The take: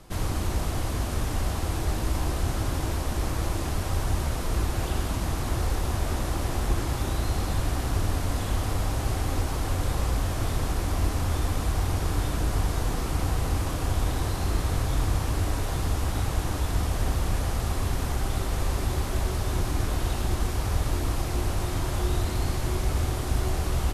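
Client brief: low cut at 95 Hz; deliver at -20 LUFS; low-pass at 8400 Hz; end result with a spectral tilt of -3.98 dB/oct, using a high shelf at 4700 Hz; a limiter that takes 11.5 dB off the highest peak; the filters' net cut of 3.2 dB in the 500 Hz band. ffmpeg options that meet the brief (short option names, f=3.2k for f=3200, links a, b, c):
-af "highpass=95,lowpass=8.4k,equalizer=f=500:t=o:g=-4.5,highshelf=f=4.7k:g=6.5,volume=17.5dB,alimiter=limit=-11.5dB:level=0:latency=1"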